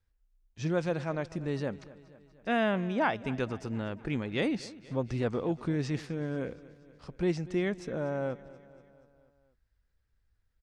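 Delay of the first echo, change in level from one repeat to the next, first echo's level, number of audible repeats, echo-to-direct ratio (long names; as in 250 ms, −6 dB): 240 ms, −4.5 dB, −19.0 dB, 4, −17.0 dB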